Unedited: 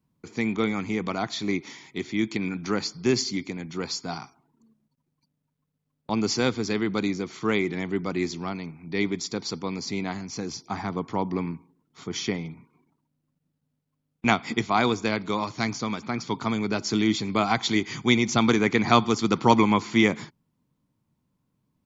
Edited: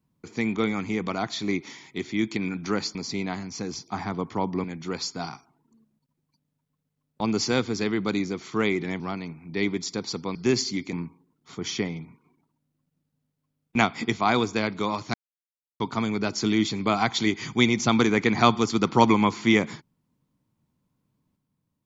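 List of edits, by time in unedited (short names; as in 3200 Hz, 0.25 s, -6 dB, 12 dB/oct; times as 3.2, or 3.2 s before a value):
2.95–3.53 swap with 9.73–11.42
7.89–8.38 cut
15.63–16.29 mute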